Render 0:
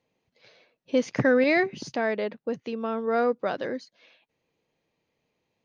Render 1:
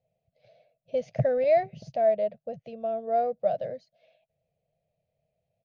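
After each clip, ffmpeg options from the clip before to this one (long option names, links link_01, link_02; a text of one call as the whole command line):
ffmpeg -i in.wav -af "firequalizer=gain_entry='entry(150,0);entry(290,-27);entry(650,6);entry(940,-26);entry(2400,-16);entry(8100,-22)':delay=0.05:min_phase=1,volume=3.5dB" out.wav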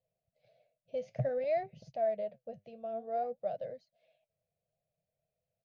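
ffmpeg -i in.wav -af "flanger=delay=1.9:depth=8.3:regen=70:speed=0.55:shape=sinusoidal,volume=-4.5dB" out.wav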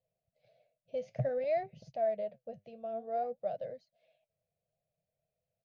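ffmpeg -i in.wav -af anull out.wav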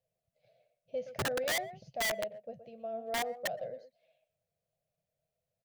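ffmpeg -i in.wav -filter_complex "[0:a]asplit=2[link_01][link_02];[link_02]adelay=120,highpass=300,lowpass=3400,asoftclip=type=hard:threshold=-32dB,volume=-11dB[link_03];[link_01][link_03]amix=inputs=2:normalize=0,aeval=exprs='(mod(23.7*val(0)+1,2)-1)/23.7':channel_layout=same" out.wav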